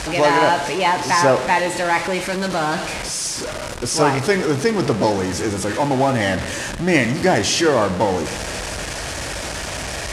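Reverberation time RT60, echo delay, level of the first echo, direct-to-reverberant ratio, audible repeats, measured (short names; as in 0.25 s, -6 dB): 1.7 s, none, none, 11.5 dB, none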